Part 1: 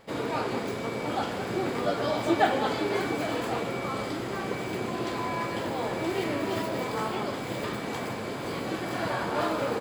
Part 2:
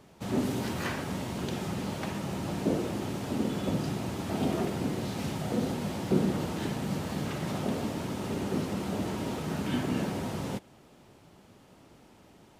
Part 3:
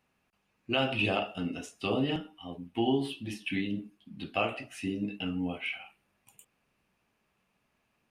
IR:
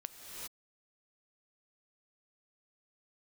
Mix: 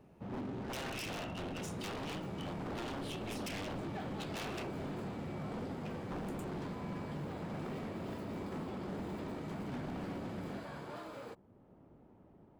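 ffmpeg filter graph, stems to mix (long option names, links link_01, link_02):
-filter_complex "[0:a]adelay=1550,volume=-10.5dB[link_01];[1:a]adynamicsmooth=sensitivity=3.5:basefreq=910,volume=-5.5dB,asplit=2[link_02][link_03];[link_03]volume=-5.5dB[link_04];[2:a]acompressor=threshold=-34dB:ratio=6,aeval=exprs='0.0376*(cos(1*acos(clip(val(0)/0.0376,-1,1)))-cos(1*PI/2))+0.00596*(cos(4*acos(clip(val(0)/0.0376,-1,1)))-cos(4*PI/2))':channel_layout=same,volume=-0.5dB,asplit=3[link_05][link_06][link_07];[link_05]atrim=end=4.67,asetpts=PTS-STARTPTS,afade=type=out:start_time=4.666:duration=0.004:curve=hsin[link_08];[link_06]atrim=start=4.67:end=5.85,asetpts=PTS-STARTPTS,volume=0[link_09];[link_07]atrim=start=5.85,asetpts=PTS-STARTPTS,afade=type=in:duration=0.004:curve=hsin[link_10];[link_08][link_09][link_10]concat=n=3:v=0:a=1[link_11];[link_01][link_02]amix=inputs=2:normalize=0,asoftclip=type=tanh:threshold=-28dB,acompressor=threshold=-58dB:ratio=1.5,volume=0dB[link_12];[3:a]atrim=start_sample=2205[link_13];[link_04][link_13]afir=irnorm=-1:irlink=0[link_14];[link_11][link_12][link_14]amix=inputs=3:normalize=0,aeval=exprs='0.0168*(abs(mod(val(0)/0.0168+3,4)-2)-1)':channel_layout=same"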